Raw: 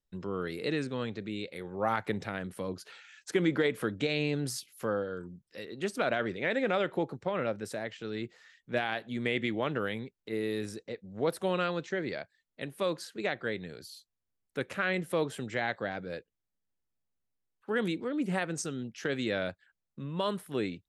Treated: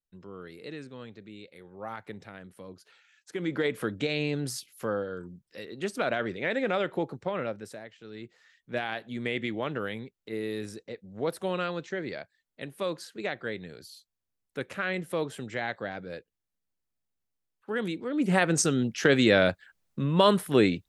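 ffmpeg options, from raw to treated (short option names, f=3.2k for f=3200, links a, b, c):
-af "volume=22dB,afade=t=in:st=3.31:d=0.4:silence=0.316228,afade=t=out:st=7.29:d=0.63:silence=0.281838,afade=t=in:st=7.92:d=0.93:silence=0.334965,afade=t=in:st=18.04:d=0.55:silence=0.266073"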